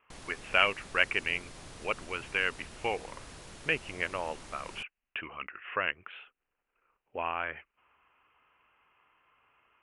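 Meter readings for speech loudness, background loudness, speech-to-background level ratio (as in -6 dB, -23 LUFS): -33.0 LUFS, -48.5 LUFS, 15.5 dB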